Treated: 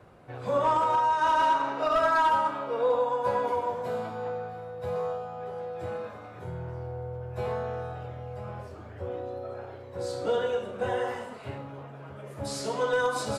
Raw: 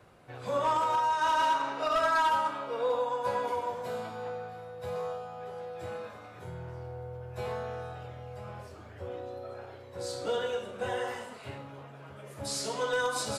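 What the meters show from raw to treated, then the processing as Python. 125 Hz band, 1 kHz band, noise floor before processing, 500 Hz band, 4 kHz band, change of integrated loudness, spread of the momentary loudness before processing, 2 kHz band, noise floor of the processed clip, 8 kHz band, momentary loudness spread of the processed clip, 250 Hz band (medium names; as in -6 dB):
+5.0 dB, +3.0 dB, -49 dBFS, +4.5 dB, -2.0 dB, +3.0 dB, 18 LU, +1.5 dB, -44 dBFS, no reading, 17 LU, +5.0 dB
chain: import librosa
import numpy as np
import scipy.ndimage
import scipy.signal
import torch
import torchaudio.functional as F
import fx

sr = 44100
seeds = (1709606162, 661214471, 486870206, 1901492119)

y = fx.high_shelf(x, sr, hz=2000.0, db=-9.0)
y = F.gain(torch.from_numpy(y), 5.0).numpy()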